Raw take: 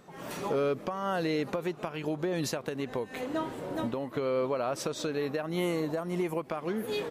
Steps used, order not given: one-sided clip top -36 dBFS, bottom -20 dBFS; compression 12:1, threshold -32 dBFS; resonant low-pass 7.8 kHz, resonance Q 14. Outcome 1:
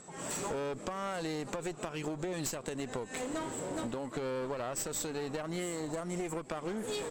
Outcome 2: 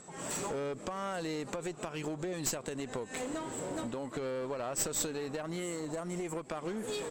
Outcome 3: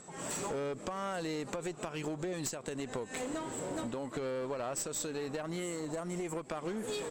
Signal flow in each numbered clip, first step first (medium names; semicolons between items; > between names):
resonant low-pass > one-sided clip > compression; compression > resonant low-pass > one-sided clip; resonant low-pass > compression > one-sided clip